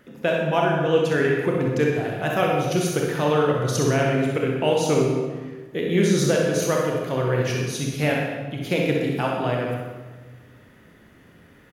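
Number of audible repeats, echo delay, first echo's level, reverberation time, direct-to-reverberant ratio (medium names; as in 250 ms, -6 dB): 1, 64 ms, -5.5 dB, 1.4 s, -2.5 dB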